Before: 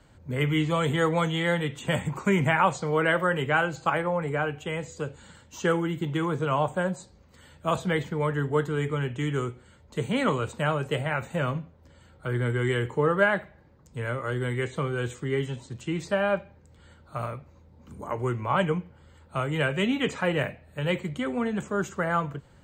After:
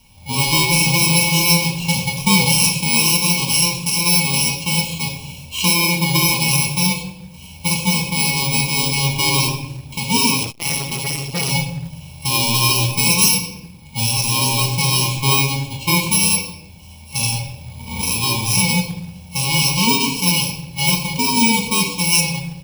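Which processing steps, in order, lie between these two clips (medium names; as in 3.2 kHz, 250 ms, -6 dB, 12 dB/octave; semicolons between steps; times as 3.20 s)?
bit-reversed sample order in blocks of 64 samples; recorder AGC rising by 8.9 dB/s; peaking EQ 2.4 kHz +14.5 dB 2.3 oct; frequency-shifting echo 130 ms, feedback 35%, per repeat -120 Hz, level -21.5 dB; FFT band-reject 1.1–2.2 kHz; dynamic bell 7 kHz, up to +5 dB, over -36 dBFS, Q 0.99; harmonic-percussive split percussive -11 dB; reverberation RT60 0.90 s, pre-delay 4 ms, DRR 1.5 dB; in parallel at -7 dB: companded quantiser 4-bit; 10.43–11.51 s: on the sum: transformer saturation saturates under 1.4 kHz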